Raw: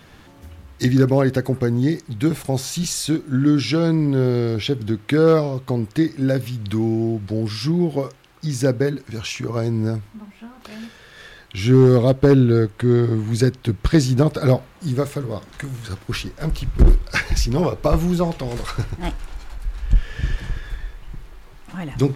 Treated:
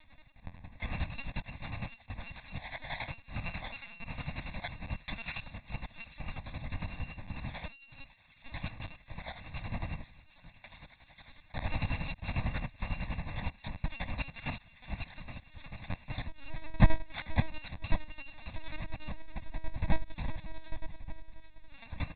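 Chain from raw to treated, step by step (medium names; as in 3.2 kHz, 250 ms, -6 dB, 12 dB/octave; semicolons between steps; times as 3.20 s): bit-reversed sample order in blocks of 256 samples; in parallel at 0 dB: compression, threshold -25 dBFS, peak gain reduction 15.5 dB; on the sum: square tremolo 11 Hz, depth 65%, duty 40%; on a send: feedback echo behind a high-pass 756 ms, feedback 63%, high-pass 1.6 kHz, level -17 dB; on the sum: LPC vocoder at 8 kHz pitch kept; static phaser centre 2 kHz, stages 8; trim -5.5 dB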